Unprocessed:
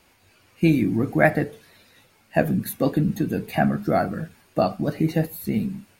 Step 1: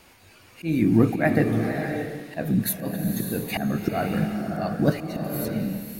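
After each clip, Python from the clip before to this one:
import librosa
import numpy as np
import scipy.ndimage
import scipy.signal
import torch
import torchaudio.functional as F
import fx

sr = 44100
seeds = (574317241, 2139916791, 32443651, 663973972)

y = fx.auto_swell(x, sr, attack_ms=341.0)
y = fx.rev_bloom(y, sr, seeds[0], attack_ms=620, drr_db=4.0)
y = y * 10.0 ** (5.5 / 20.0)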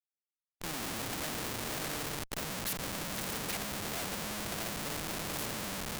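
y = fx.schmitt(x, sr, flips_db=-32.5)
y = fx.spectral_comp(y, sr, ratio=2.0)
y = y * 10.0 ** (-2.5 / 20.0)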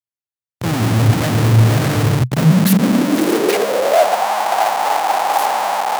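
y = fx.leveller(x, sr, passes=5)
y = fx.filter_sweep_highpass(y, sr, from_hz=110.0, to_hz=800.0, start_s=2.13, end_s=4.26, q=7.6)
y = y * 10.0 ** (5.0 / 20.0)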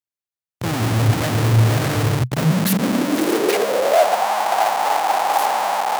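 y = fx.dynamic_eq(x, sr, hz=190.0, q=1.4, threshold_db=-24.0, ratio=4.0, max_db=-5)
y = y * 10.0 ** (-2.0 / 20.0)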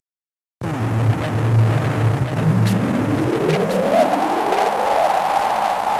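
y = fx.cvsd(x, sr, bps=64000)
y = y + 10.0 ** (-4.5 / 20.0) * np.pad(y, (int(1038 * sr / 1000.0), 0))[:len(y)]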